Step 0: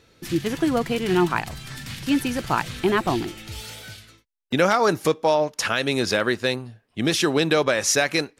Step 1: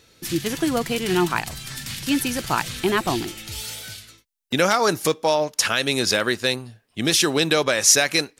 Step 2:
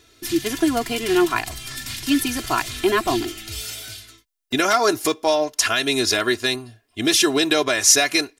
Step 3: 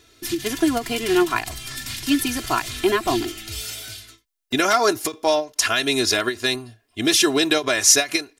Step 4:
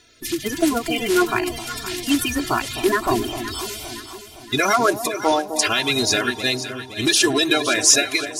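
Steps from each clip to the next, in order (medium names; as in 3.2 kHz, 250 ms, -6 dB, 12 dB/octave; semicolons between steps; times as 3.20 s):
treble shelf 3.5 kHz +10.5 dB; trim -1 dB
comb 2.9 ms, depth 82%; trim -1 dB
endings held to a fixed fall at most 250 dB/s
coarse spectral quantiser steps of 30 dB; echo whose repeats swap between lows and highs 258 ms, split 820 Hz, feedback 68%, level -8 dB; trim +1 dB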